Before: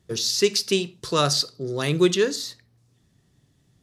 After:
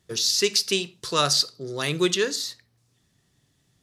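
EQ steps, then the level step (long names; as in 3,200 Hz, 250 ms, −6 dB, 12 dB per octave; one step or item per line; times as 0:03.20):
tilt shelving filter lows −4 dB, about 710 Hz
−2.0 dB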